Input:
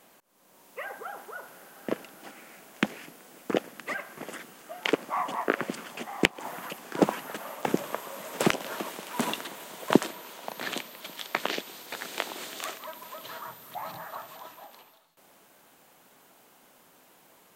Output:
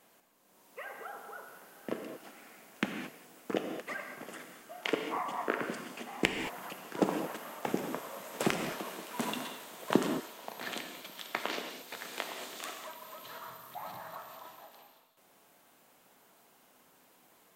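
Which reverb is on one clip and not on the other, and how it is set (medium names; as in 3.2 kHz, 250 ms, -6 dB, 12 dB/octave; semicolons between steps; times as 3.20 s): gated-style reverb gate 250 ms flat, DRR 4 dB; trim -6.5 dB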